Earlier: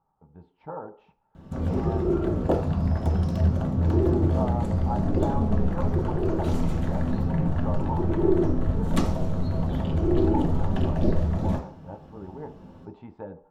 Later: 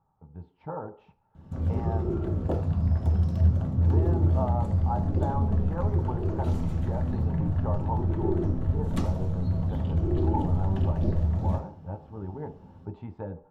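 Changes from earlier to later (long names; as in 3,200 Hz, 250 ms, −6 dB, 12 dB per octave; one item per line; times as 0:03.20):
background −8.0 dB
master: add parametric band 94 Hz +10 dB 1.4 octaves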